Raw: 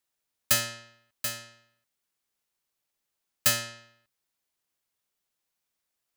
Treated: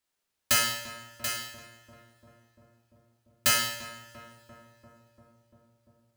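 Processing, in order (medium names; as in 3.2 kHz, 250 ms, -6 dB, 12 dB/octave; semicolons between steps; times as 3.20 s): treble shelf 7.8 kHz -5.5 dB; de-hum 58.39 Hz, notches 2; on a send: filtered feedback delay 344 ms, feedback 79%, low-pass 1.2 kHz, level -11 dB; on the sum: two-slope reverb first 0.77 s, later 3.3 s, from -26 dB, DRR -1 dB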